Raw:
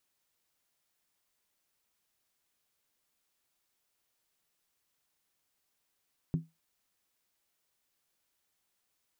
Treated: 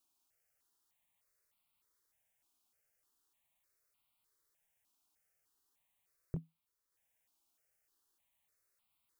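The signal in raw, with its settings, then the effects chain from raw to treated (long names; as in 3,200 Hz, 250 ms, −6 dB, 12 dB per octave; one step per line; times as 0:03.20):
struck skin, lowest mode 162 Hz, decay 0.21 s, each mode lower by 9.5 dB, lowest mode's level −23 dB
transient designer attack +1 dB, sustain −7 dB
step-sequenced phaser 3.3 Hz 510–1,700 Hz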